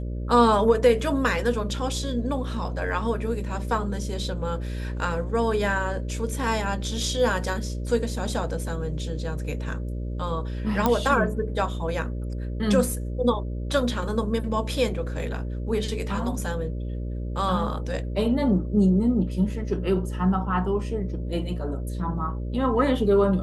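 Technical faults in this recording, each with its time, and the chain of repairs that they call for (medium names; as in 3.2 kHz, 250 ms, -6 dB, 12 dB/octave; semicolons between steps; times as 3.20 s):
buzz 60 Hz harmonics 10 -30 dBFS
10.86 s: pop -8 dBFS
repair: de-click; de-hum 60 Hz, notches 10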